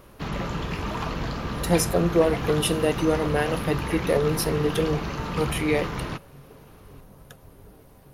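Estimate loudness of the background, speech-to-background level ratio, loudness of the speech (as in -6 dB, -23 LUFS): -30.5 LUFS, 5.5 dB, -25.0 LUFS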